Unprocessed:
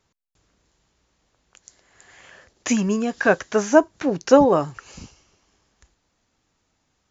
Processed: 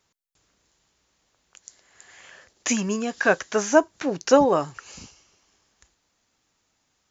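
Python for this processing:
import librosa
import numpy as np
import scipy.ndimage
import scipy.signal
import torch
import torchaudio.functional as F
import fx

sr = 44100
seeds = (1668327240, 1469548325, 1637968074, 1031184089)

y = fx.tilt_eq(x, sr, slope=1.5)
y = y * 10.0 ** (-1.5 / 20.0)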